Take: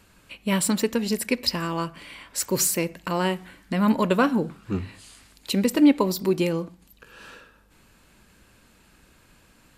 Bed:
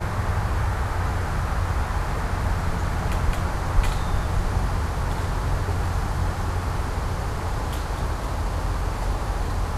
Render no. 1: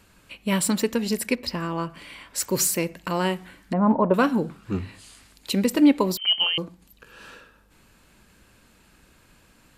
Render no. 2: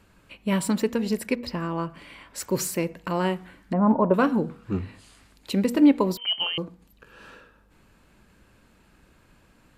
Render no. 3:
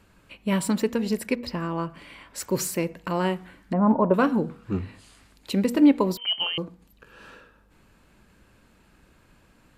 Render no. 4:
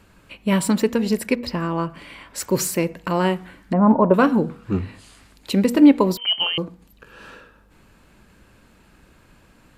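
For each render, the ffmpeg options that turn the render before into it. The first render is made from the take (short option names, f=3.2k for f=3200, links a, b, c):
-filter_complex "[0:a]asettb=1/sr,asplit=3[a][b][c];[a]atrim=end=1.354[d];[b]atrim=start=1.35:end=1.9,asetpts=PTS-STARTPTS,afade=t=in:d=0.004:c=qsin,afade=t=out:st=0.546:d=0.004:c=qsin,highshelf=f=3k:g=-9.5[e];[c]atrim=start=1.896[f];[d][e]acrossfade=d=0.004:c1=hsin:c2=qsin[g];[g][f]acrossfade=d=0.004:c1=qsin:c2=hsin,asettb=1/sr,asplit=3[h][i][j];[h]atrim=end=3.734[k];[i]atrim=start=3.73:end=4.14,asetpts=PTS-STARTPTS,afade=t=in:d=0.004:c=qsin,afade=t=out:st=0.406:d=0.004:c=qsin,lowpass=f=850:t=q:w=2[l];[j]atrim=start=4.136[m];[k][l]acrossfade=d=0.004:c1=hsin:c2=qsin[n];[n][m]acrossfade=d=0.004:c1=qsin:c2=hsin,asettb=1/sr,asplit=3[o][p][q];[o]atrim=end=6.174[r];[p]atrim=start=6.17:end=6.58,asetpts=PTS-STARTPTS,afade=t=in:d=0.004:c=qsin,afade=t=out:st=0.406:d=0.004:c=qsin,lowpass=f=2.8k:t=q:w=0.5098,lowpass=f=2.8k:t=q:w=0.6013,lowpass=f=2.8k:t=q:w=0.9,lowpass=f=2.8k:t=q:w=2.563,afreqshift=-3300[s];[q]atrim=start=6.576[t];[r][s]acrossfade=d=0.004:c1=hsin:c2=qsin[u];[u][t]acrossfade=d=0.004:c1=qsin:c2=hsin"
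-af "highshelf=f=2.6k:g=-8.5,bandreject=f=240.5:t=h:w=4,bandreject=f=481:t=h:w=4,bandreject=f=721.5:t=h:w=4,bandreject=f=962:t=h:w=4,bandreject=f=1.2025k:t=h:w=4,bandreject=f=1.443k:t=h:w=4"
-af anull
-af "volume=5dB"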